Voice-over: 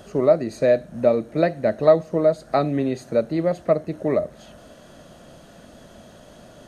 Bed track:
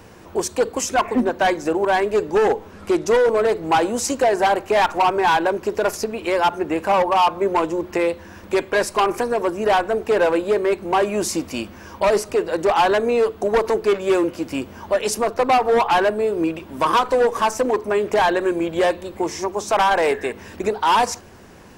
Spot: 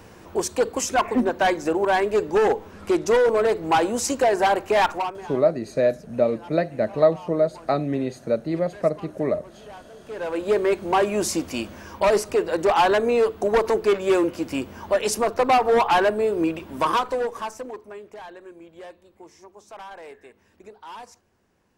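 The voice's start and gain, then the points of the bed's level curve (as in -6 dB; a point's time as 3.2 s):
5.15 s, -2.5 dB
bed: 4.9 s -2 dB
5.33 s -25.5 dB
9.92 s -25.5 dB
10.5 s -1.5 dB
16.76 s -1.5 dB
18.2 s -23 dB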